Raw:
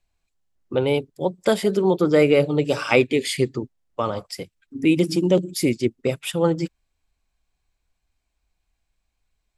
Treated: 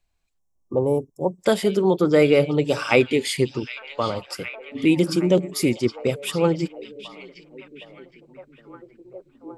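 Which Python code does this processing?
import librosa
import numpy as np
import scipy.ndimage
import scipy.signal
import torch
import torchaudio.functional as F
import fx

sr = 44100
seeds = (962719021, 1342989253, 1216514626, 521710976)

y = fx.echo_stepped(x, sr, ms=765, hz=3700.0, octaves=-0.7, feedback_pct=70, wet_db=-8.5)
y = fx.spec_box(y, sr, start_s=0.39, length_s=1.0, low_hz=1200.0, high_hz=5200.0, gain_db=-28)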